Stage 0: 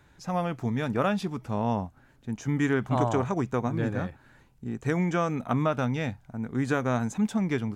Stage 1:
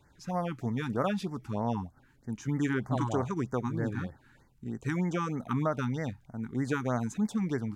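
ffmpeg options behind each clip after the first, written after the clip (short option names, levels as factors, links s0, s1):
-af "afftfilt=real='re*(1-between(b*sr/1024,520*pow(3200/520,0.5+0.5*sin(2*PI*3.2*pts/sr))/1.41,520*pow(3200/520,0.5+0.5*sin(2*PI*3.2*pts/sr))*1.41))':imag='im*(1-between(b*sr/1024,520*pow(3200/520,0.5+0.5*sin(2*PI*3.2*pts/sr))/1.41,520*pow(3200/520,0.5+0.5*sin(2*PI*3.2*pts/sr))*1.41))':win_size=1024:overlap=0.75,volume=0.668"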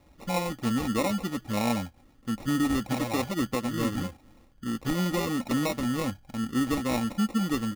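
-af "acrusher=samples=28:mix=1:aa=0.000001,aecho=1:1:3.7:0.52,alimiter=limit=0.075:level=0:latency=1:release=325,volume=1.68"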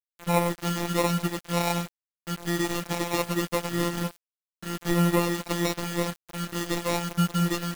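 -af "afftfilt=real='hypot(re,im)*cos(PI*b)':imag='0':win_size=1024:overlap=0.75,acrusher=bits=6:mix=0:aa=0.000001,aeval=exprs='sgn(val(0))*max(abs(val(0))-0.00596,0)':c=same,volume=2.24"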